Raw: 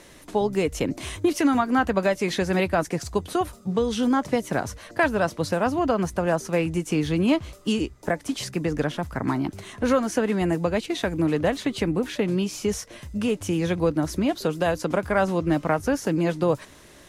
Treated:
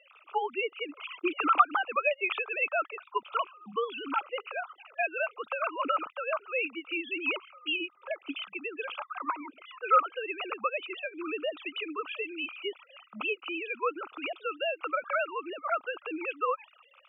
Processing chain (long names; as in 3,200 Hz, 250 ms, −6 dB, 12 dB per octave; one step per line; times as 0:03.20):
three sine waves on the formant tracks
pair of resonant band-passes 1,800 Hz, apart 1 octave
level +9 dB